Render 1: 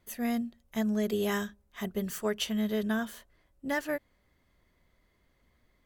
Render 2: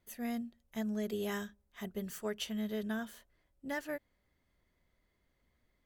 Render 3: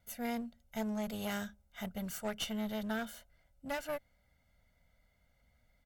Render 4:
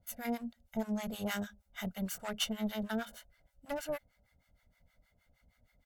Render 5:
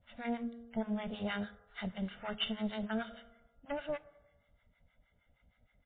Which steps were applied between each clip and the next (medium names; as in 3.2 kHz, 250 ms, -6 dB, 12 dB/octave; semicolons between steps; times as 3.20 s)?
peaking EQ 1.1 kHz -3 dB 0.21 oct; trim -7 dB
comb 1.4 ms, depth 87%; one-sided clip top -42 dBFS; trim +1.5 dB
harmonic tremolo 6.4 Hz, depth 100%, crossover 780 Hz; trim +5.5 dB
on a send at -18 dB: reverberation RT60 1.1 s, pre-delay 76 ms; on the sum: MP3 16 kbps 8 kHz